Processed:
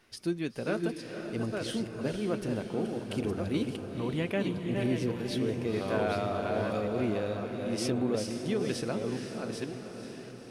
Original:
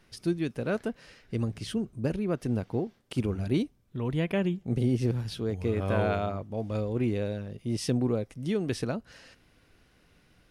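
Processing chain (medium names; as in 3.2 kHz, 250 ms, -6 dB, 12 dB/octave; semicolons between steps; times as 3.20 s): chunks repeated in reverse 573 ms, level -5 dB; bass shelf 160 Hz -10.5 dB; in parallel at -3 dB: peak limiter -24.5 dBFS, peak gain reduction 10 dB; on the sum: flange 0.62 Hz, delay 2.6 ms, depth 3.4 ms, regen -71%; echo that smears into a reverb 500 ms, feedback 59%, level -8 dB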